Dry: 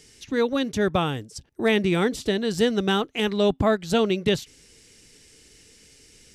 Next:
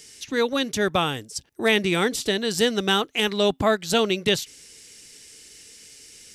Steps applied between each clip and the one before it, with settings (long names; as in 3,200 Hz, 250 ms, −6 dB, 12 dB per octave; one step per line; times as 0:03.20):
spectral tilt +2 dB per octave
level +2 dB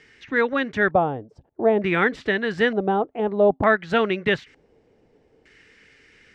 auto-filter low-pass square 0.55 Hz 720–1,800 Hz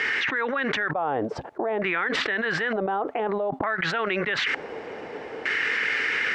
resonant band-pass 1,400 Hz, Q 0.98
envelope flattener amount 100%
level −7.5 dB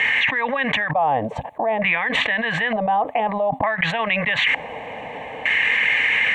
phaser with its sweep stopped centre 1,400 Hz, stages 6
level +9 dB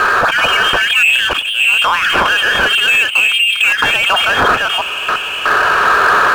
delay that plays each chunk backwards 344 ms, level −3.5 dB
voice inversion scrambler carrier 3,400 Hz
power curve on the samples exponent 0.7
level +3.5 dB